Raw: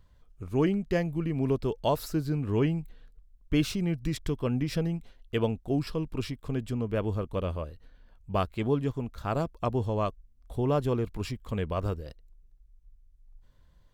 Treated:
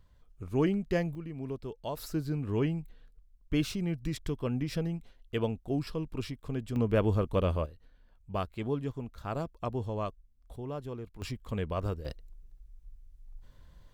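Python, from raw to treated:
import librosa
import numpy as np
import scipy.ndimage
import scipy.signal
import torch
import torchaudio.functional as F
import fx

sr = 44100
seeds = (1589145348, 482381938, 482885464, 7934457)

y = fx.gain(x, sr, db=fx.steps((0.0, -2.0), (1.15, -10.5), (1.97, -3.5), (6.76, 3.0), (7.66, -5.5), (10.56, -12.0), (11.22, -2.5), (12.05, 5.5)))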